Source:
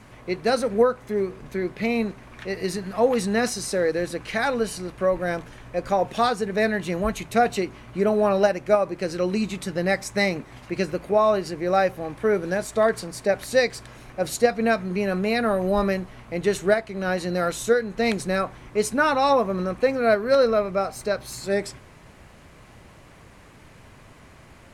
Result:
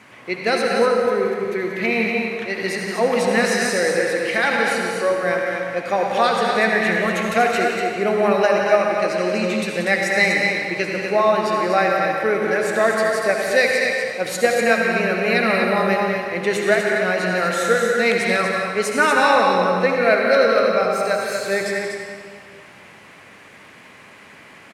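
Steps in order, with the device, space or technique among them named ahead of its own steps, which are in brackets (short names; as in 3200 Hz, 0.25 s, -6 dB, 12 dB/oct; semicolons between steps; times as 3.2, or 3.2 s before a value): stadium PA (HPF 190 Hz 12 dB/oct; bell 2200 Hz +8 dB 1.4 oct; loudspeakers at several distances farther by 62 m -11 dB, 83 m -6 dB; reverb RT60 2.1 s, pre-delay 62 ms, DRR 1.5 dB)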